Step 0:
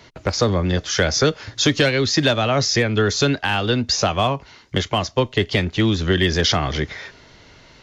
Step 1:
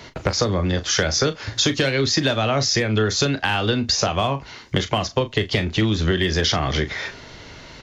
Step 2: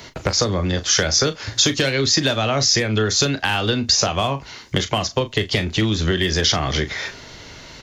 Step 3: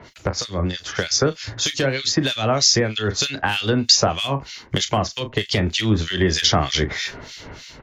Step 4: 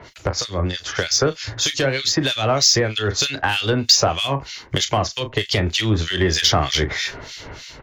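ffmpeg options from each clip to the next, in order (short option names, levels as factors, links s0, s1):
-filter_complex "[0:a]acompressor=threshold=0.0562:ratio=4,asplit=2[s0][s1];[s1]adelay=37,volume=0.266[s2];[s0][s2]amix=inputs=2:normalize=0,volume=2.11"
-af "highshelf=f=6300:g=11"
-filter_complex "[0:a]dynaudnorm=f=250:g=5:m=3.76,acrossover=split=1900[s0][s1];[s0]aeval=exprs='val(0)*(1-1/2+1/2*cos(2*PI*3.2*n/s))':c=same[s2];[s1]aeval=exprs='val(0)*(1-1/2-1/2*cos(2*PI*3.2*n/s))':c=same[s3];[s2][s3]amix=inputs=2:normalize=0"
-filter_complex "[0:a]equalizer=f=210:w=1.9:g=-6,asplit=2[s0][s1];[s1]asoftclip=type=tanh:threshold=0.133,volume=0.501[s2];[s0][s2]amix=inputs=2:normalize=0,volume=0.891"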